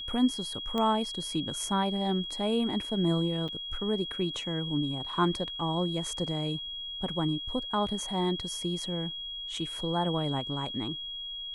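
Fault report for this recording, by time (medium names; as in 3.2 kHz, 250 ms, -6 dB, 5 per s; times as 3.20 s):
whine 3.3 kHz -36 dBFS
0.78 s: pop -19 dBFS
3.48–3.49 s: dropout 6.5 ms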